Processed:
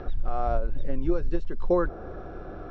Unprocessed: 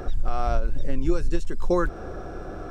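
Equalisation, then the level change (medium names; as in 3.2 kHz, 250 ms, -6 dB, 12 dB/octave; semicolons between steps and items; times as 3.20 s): low-pass 4.2 kHz 24 dB/octave; dynamic bell 3 kHz, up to -7 dB, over -50 dBFS, Q 1; dynamic bell 570 Hz, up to +5 dB, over -36 dBFS, Q 1.1; -3.5 dB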